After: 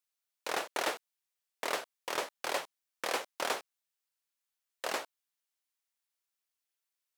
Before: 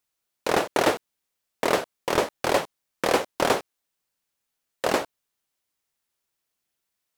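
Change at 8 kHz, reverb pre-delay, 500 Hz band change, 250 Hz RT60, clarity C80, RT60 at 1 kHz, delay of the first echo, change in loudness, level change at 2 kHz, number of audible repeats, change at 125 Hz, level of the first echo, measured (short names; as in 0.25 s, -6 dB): -7.0 dB, none, -14.5 dB, none, none, none, none, -11.0 dB, -8.5 dB, none, -24.5 dB, none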